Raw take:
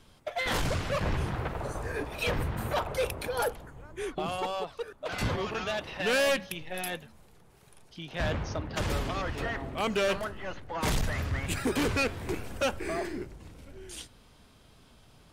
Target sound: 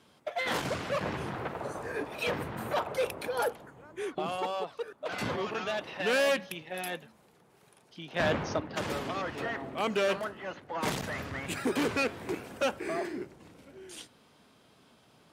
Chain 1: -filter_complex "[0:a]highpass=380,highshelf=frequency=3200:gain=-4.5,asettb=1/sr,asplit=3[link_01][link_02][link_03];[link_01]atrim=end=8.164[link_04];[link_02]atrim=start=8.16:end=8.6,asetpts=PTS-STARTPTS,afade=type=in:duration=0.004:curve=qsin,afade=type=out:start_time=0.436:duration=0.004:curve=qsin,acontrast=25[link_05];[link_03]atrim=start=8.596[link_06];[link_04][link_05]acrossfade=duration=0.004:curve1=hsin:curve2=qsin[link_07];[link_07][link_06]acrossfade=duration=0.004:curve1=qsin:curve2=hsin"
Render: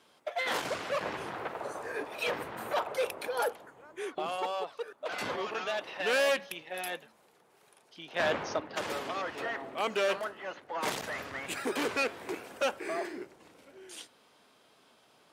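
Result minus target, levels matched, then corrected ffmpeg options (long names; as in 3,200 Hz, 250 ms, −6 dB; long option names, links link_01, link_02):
250 Hz band −5.0 dB
-filter_complex "[0:a]highpass=180,highshelf=frequency=3200:gain=-4.5,asettb=1/sr,asplit=3[link_01][link_02][link_03];[link_01]atrim=end=8.164[link_04];[link_02]atrim=start=8.16:end=8.6,asetpts=PTS-STARTPTS,afade=type=in:duration=0.004:curve=qsin,afade=type=out:start_time=0.436:duration=0.004:curve=qsin,acontrast=25[link_05];[link_03]atrim=start=8.596[link_06];[link_04][link_05]acrossfade=duration=0.004:curve1=hsin:curve2=qsin[link_07];[link_07][link_06]acrossfade=duration=0.004:curve1=qsin:curve2=hsin"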